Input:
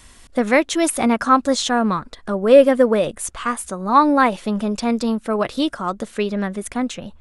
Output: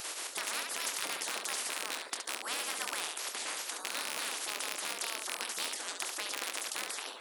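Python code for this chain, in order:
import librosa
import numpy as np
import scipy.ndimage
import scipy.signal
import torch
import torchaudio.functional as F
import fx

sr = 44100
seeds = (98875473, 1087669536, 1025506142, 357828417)

p1 = fx.rattle_buzz(x, sr, strikes_db=-27.0, level_db=-20.0)
p2 = fx.spec_gate(p1, sr, threshold_db=-20, keep='weak')
p3 = scipy.signal.sosfilt(scipy.signal.butter(4, 420.0, 'highpass', fs=sr, output='sos'), p2)
p4 = fx.peak_eq(p3, sr, hz=1100.0, db=5.5, octaves=0.77)
p5 = p4 + fx.room_early_taps(p4, sr, ms=(25, 69), db=(-9.0, -11.5), dry=0)
p6 = fx.spectral_comp(p5, sr, ratio=4.0)
y = p6 * 10.0 ** (-2.5 / 20.0)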